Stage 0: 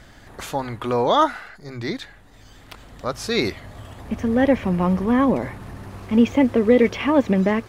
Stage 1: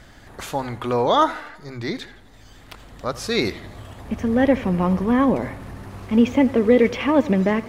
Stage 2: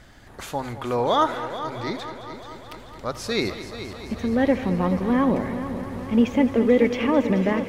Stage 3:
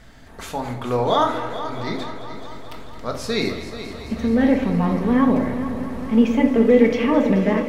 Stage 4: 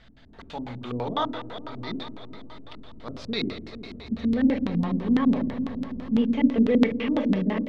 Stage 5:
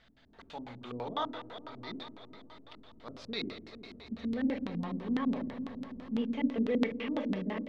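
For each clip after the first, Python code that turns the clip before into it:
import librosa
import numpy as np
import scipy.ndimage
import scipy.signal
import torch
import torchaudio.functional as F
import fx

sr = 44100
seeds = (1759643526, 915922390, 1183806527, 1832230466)

y1 = fx.echo_warbled(x, sr, ms=84, feedback_pct=54, rate_hz=2.8, cents=101, wet_db=-18.0)
y2 = fx.echo_heads(y1, sr, ms=216, heads='first and second', feedback_pct=65, wet_db=-14)
y2 = y2 * 10.0 ** (-3.0 / 20.0)
y3 = fx.room_shoebox(y2, sr, seeds[0], volume_m3=580.0, walls='furnished', distance_m=1.6)
y4 = fx.filter_lfo_lowpass(y3, sr, shape='square', hz=6.0, low_hz=260.0, high_hz=3700.0, q=2.2)
y4 = y4 * 10.0 ** (-8.5 / 20.0)
y5 = fx.low_shelf(y4, sr, hz=210.0, db=-8.0)
y5 = y5 * 10.0 ** (-7.0 / 20.0)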